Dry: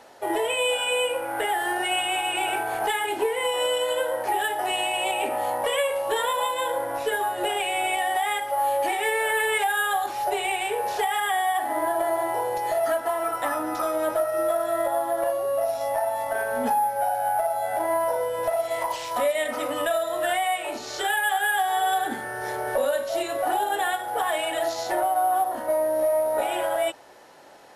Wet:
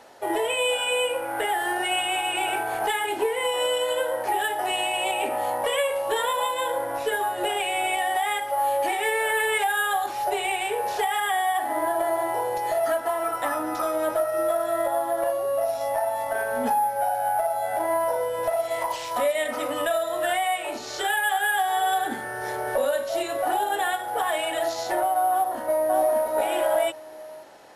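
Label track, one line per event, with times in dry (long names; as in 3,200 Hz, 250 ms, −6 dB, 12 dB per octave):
25.310000	26.270000	delay throw 580 ms, feedback 15%, level −2.5 dB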